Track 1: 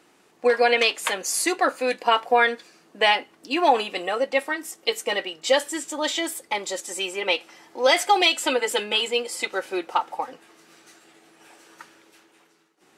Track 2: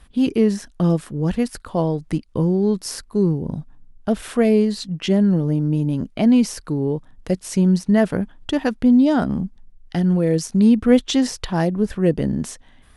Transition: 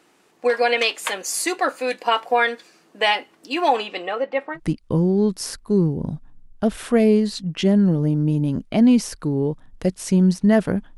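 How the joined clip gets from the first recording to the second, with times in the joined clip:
track 1
3.76–4.60 s: low-pass 7.3 kHz -> 1.1 kHz
4.57 s: go over to track 2 from 2.02 s, crossfade 0.06 s

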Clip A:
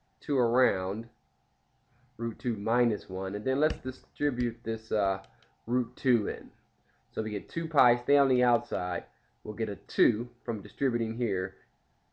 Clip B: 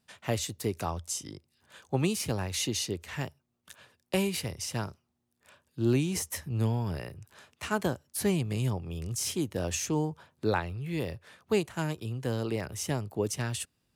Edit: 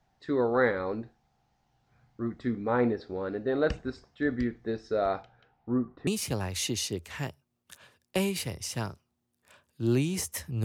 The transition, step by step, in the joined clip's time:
clip A
5.22–6.07 s: low-pass 4.3 kHz -> 1.2 kHz
6.07 s: go over to clip B from 2.05 s

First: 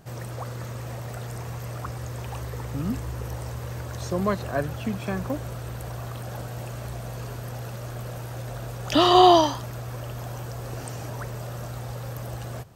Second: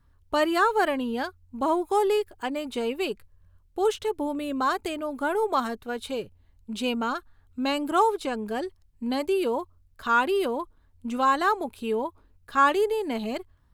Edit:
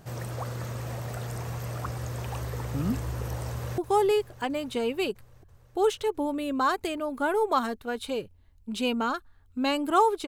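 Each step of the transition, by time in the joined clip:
first
3.50–3.78 s: echo throw 330 ms, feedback 75%, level -13.5 dB
3.78 s: go over to second from 1.79 s

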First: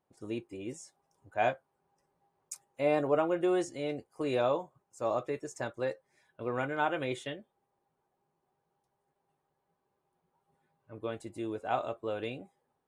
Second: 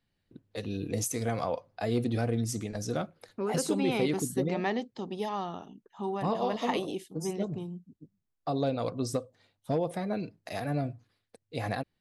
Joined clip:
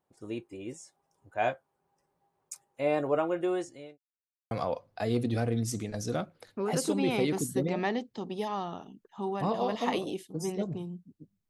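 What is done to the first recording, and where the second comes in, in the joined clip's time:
first
3.23–3.98 s: fade out equal-power
3.98–4.51 s: mute
4.51 s: go over to second from 1.32 s

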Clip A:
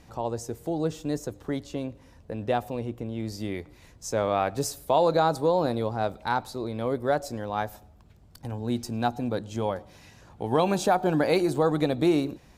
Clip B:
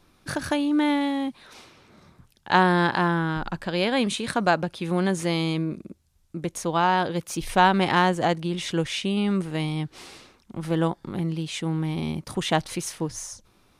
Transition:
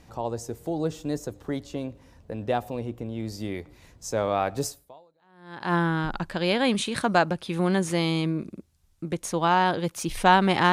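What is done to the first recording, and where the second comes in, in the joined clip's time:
clip A
5.20 s: go over to clip B from 2.52 s, crossfade 1.08 s exponential

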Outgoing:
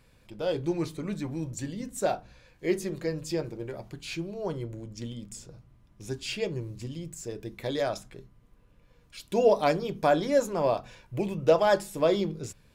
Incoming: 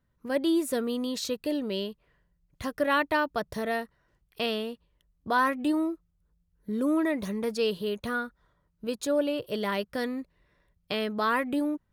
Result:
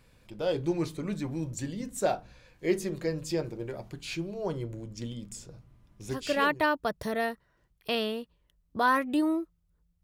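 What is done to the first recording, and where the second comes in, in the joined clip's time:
outgoing
6.29 s: go over to incoming from 2.80 s, crossfade 0.76 s equal-power

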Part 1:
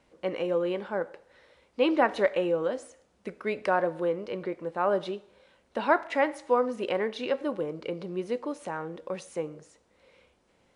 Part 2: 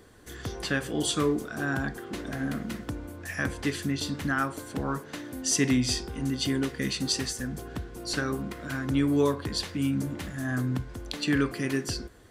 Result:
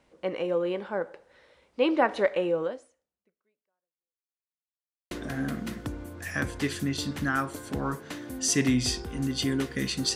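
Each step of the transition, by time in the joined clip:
part 1
2.63–4.47 s: fade out exponential
4.47–5.11 s: mute
5.11 s: go over to part 2 from 2.14 s

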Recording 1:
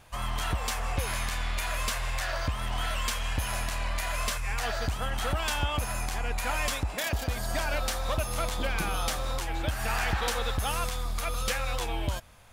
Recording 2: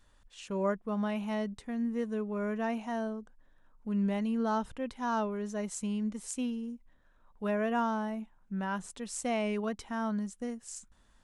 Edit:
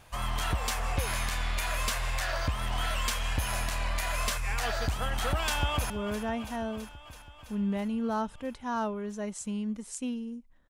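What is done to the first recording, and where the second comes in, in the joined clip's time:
recording 1
5.40–5.90 s: echo throw 330 ms, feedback 75%, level -12.5 dB
5.90 s: go over to recording 2 from 2.26 s

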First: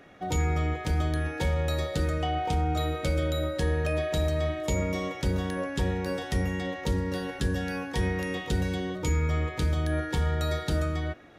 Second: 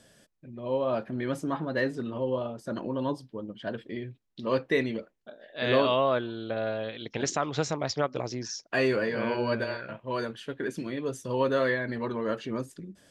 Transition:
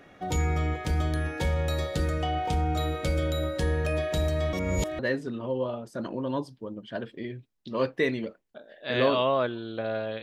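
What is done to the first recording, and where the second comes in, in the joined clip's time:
first
4.53–4.99 s: reverse
4.99 s: go over to second from 1.71 s

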